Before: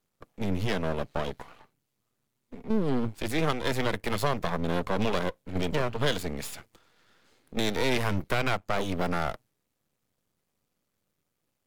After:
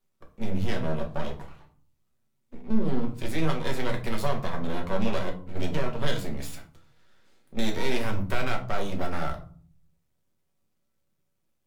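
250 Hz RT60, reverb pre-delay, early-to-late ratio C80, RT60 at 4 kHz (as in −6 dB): 0.80 s, 5 ms, 16.5 dB, 0.25 s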